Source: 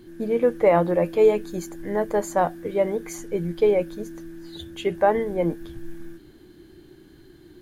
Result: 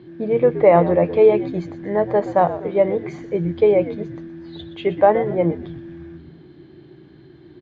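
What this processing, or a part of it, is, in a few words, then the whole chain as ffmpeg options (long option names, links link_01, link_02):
frequency-shifting delay pedal into a guitar cabinet: -filter_complex "[0:a]asplit=5[link_01][link_02][link_03][link_04][link_05];[link_02]adelay=121,afreqshift=-86,volume=-13dB[link_06];[link_03]adelay=242,afreqshift=-172,volume=-20.1dB[link_07];[link_04]adelay=363,afreqshift=-258,volume=-27.3dB[link_08];[link_05]adelay=484,afreqshift=-344,volume=-34.4dB[link_09];[link_01][link_06][link_07][link_08][link_09]amix=inputs=5:normalize=0,highpass=93,equalizer=frequency=140:width_type=q:width=4:gain=8,equalizer=frequency=240:width_type=q:width=4:gain=-4,equalizer=frequency=650:width_type=q:width=4:gain=3,equalizer=frequency=1500:width_type=q:width=4:gain=-5,equalizer=frequency=2900:width_type=q:width=4:gain=-4,lowpass=frequency=3600:width=0.5412,lowpass=frequency=3600:width=1.3066,volume=4dB"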